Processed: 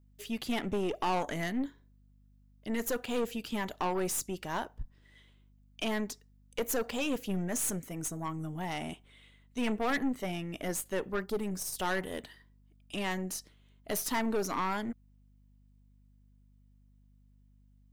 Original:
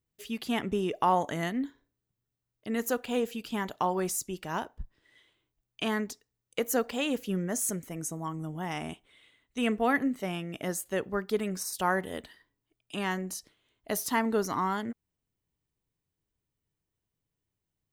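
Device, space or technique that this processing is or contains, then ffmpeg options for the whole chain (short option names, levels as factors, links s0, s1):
valve amplifier with mains hum: -filter_complex "[0:a]aeval=exprs='(tanh(25.1*val(0)+0.45)-tanh(0.45))/25.1':c=same,aeval=exprs='val(0)+0.000708*(sin(2*PI*50*n/s)+sin(2*PI*2*50*n/s)/2+sin(2*PI*3*50*n/s)/3+sin(2*PI*4*50*n/s)/4+sin(2*PI*5*50*n/s)/5)':c=same,asettb=1/sr,asplit=3[s0][s1][s2];[s0]atrim=end=11.264[s3];[s1]atrim=start=11.26:end=11.76,asetpts=PTS-STARTPTS,afade=t=in:d=0.004:c=qsin,afade=t=out:st=0.496:d=0.004:c=qsin,equalizer=f=2300:t=o:w=2.4:g=-6.5[s4];[s2]atrim=start=11.756[s5];[s3][s4]acrossfade=d=0.004:c1=hsin:c2=qsin[s6];[s6][s5]acrossfade=d=0.004:c1=qsin:c2=hsin,volume=1.26"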